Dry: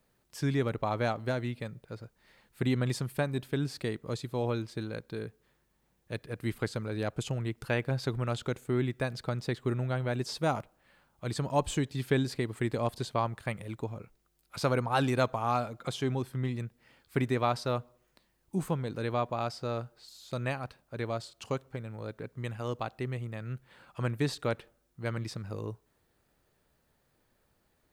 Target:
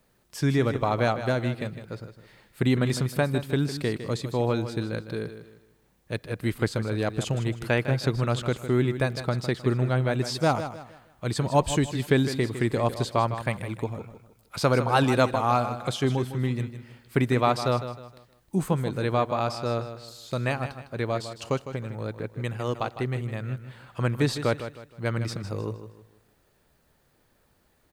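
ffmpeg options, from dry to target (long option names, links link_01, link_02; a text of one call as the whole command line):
ffmpeg -i in.wav -af "aecho=1:1:156|312|468|624:0.282|0.0958|0.0326|0.0111,volume=6dB" out.wav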